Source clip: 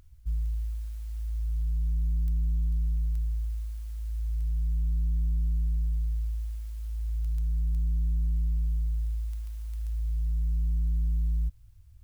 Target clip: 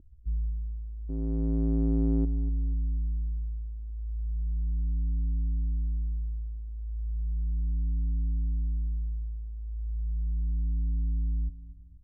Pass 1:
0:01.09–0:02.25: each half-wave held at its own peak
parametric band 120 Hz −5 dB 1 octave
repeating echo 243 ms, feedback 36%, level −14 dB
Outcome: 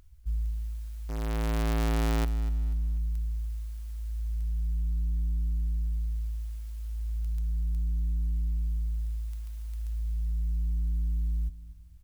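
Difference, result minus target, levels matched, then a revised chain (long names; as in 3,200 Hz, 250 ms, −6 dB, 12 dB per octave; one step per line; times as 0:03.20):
250 Hz band −5.0 dB
0:01.09–0:02.25: each half-wave held at its own peak
low-pass with resonance 300 Hz, resonance Q 2.2
parametric band 120 Hz −5 dB 1 octave
repeating echo 243 ms, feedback 36%, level −14 dB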